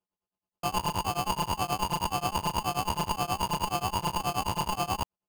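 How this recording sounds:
a buzz of ramps at a fixed pitch in blocks of 16 samples
tremolo triangle 9.4 Hz, depth 100%
aliases and images of a low sample rate 1,900 Hz, jitter 0%

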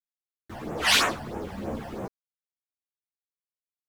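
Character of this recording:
phaser sweep stages 12, 3.1 Hz, lowest notch 370–4,700 Hz
a quantiser's noise floor 10 bits, dither none
a shimmering, thickened sound

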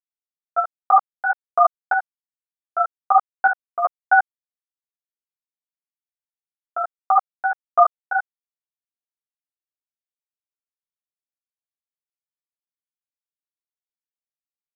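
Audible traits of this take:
chopped level 1.3 Hz, depth 60%, duty 50%
a quantiser's noise floor 12 bits, dither none
a shimmering, thickened sound

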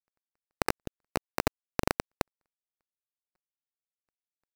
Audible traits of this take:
aliases and images of a low sample rate 3,300 Hz, jitter 0%
tremolo saw up 5.6 Hz, depth 35%
a quantiser's noise floor 12 bits, dither none

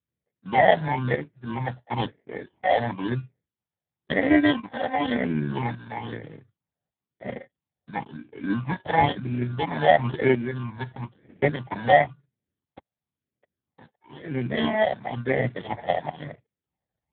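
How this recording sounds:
aliases and images of a low sample rate 1,300 Hz, jitter 0%
tremolo saw up 0.87 Hz, depth 65%
phaser sweep stages 8, 0.99 Hz, lowest notch 330–1,100 Hz
Speex

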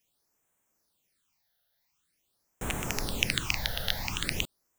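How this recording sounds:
phaser sweep stages 8, 0.46 Hz, lowest notch 310–4,600 Hz

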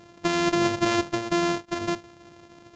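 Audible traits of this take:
a buzz of ramps at a fixed pitch in blocks of 128 samples
mu-law

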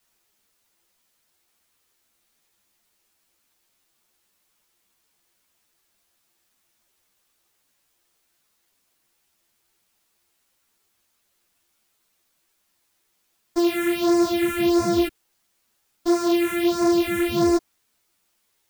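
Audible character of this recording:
a buzz of ramps at a fixed pitch in blocks of 128 samples
phaser sweep stages 4, 1.5 Hz, lowest notch 780–3,000 Hz
a quantiser's noise floor 12 bits, dither triangular
a shimmering, thickened sound

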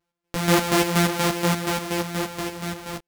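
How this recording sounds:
a buzz of ramps at a fixed pitch in blocks of 256 samples
chopped level 4.2 Hz, depth 60%, duty 45%
a shimmering, thickened sound

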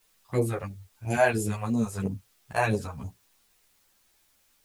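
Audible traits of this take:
phaser sweep stages 2, 3 Hz, lowest notch 210–1,500 Hz
a quantiser's noise floor 12 bits, dither triangular
a shimmering, thickened sound

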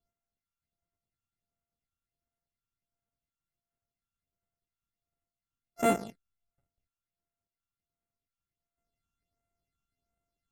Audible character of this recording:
a buzz of ramps at a fixed pitch in blocks of 64 samples
phaser sweep stages 8, 1.4 Hz, lowest notch 580–5,000 Hz
MP3

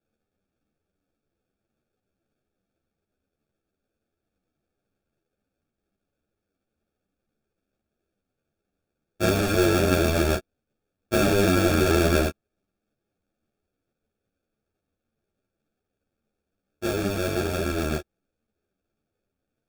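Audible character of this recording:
aliases and images of a low sample rate 1,000 Hz, jitter 0%
a shimmering, thickened sound

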